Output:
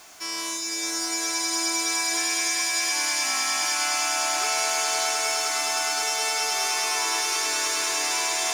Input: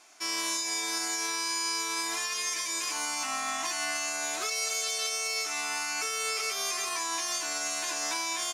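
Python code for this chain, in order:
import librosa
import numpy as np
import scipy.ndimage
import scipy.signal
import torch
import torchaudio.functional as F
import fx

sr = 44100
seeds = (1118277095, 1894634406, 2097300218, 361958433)

y = x + 0.5 * 10.0 ** (-45.0 / 20.0) * np.sign(x)
y = fx.notch(y, sr, hz=2400.0, q=27.0)
y = fx.echo_swell(y, sr, ms=103, loudest=8, wet_db=-6.5)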